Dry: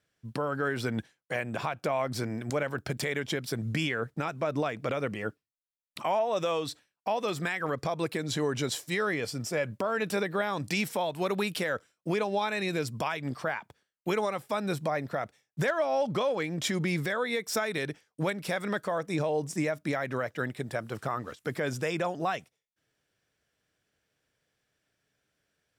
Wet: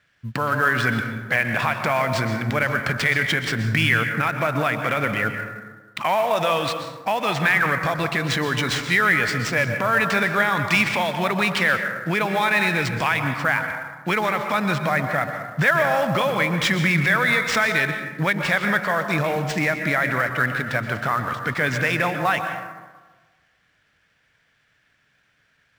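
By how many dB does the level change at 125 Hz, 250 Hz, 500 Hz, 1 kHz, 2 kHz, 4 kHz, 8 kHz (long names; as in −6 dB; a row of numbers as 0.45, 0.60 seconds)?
+10.0, +7.0, +5.0, +10.5, +15.5, +10.0, +5.5 decibels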